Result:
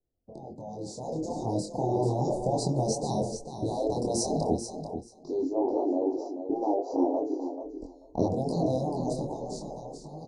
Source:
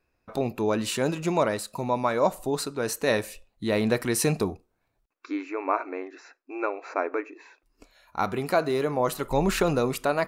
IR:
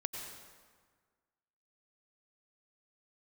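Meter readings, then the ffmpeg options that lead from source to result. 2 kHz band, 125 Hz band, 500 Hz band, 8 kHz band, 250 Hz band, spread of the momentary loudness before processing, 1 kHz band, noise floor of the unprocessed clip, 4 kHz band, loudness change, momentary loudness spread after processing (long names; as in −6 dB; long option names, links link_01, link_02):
below −40 dB, 0.0 dB, −3.0 dB, −4.0 dB, −0.5 dB, 11 LU, −4.5 dB, −75 dBFS, −7.5 dB, −3.0 dB, 12 LU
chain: -filter_complex "[0:a]lowpass=4700,agate=range=-9dB:threshold=-50dB:ratio=16:detection=peak,afftfilt=real='re*lt(hypot(re,im),0.126)':imag='im*lt(hypot(re,im),0.126)':win_size=1024:overlap=0.75,acrossover=split=120[link_01][link_02];[link_01]acompressor=threshold=-60dB:ratio=20[link_03];[link_03][link_02]amix=inputs=2:normalize=0,asuperstop=centerf=2000:order=12:qfactor=0.5,lowshelf=frequency=270:gain=-3,dynaudnorm=framelen=150:gausssize=17:maxgain=15.5dB,flanger=delay=22.5:depth=3.1:speed=0.36,tiltshelf=frequency=660:gain=6.5,asplit=2[link_04][link_05];[link_05]aecho=0:1:437|874:0.355|0.0568[link_06];[link_04][link_06]amix=inputs=2:normalize=0" -ar 22050 -c:a libvorbis -b:a 64k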